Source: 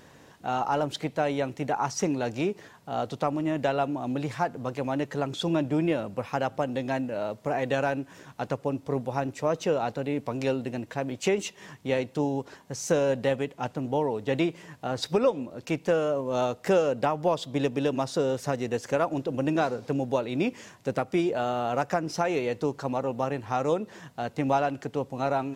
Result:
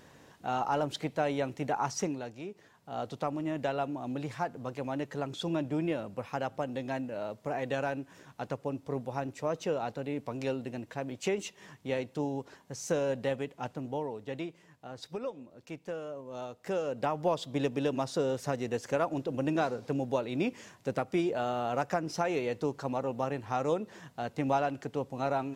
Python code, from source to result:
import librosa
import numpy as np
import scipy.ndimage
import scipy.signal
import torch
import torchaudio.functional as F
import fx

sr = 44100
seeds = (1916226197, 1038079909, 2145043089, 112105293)

y = fx.gain(x, sr, db=fx.line((1.97, -3.5), (2.39, -15.0), (3.04, -6.0), (13.71, -6.0), (14.6, -14.0), (16.5, -14.0), (17.16, -4.0)))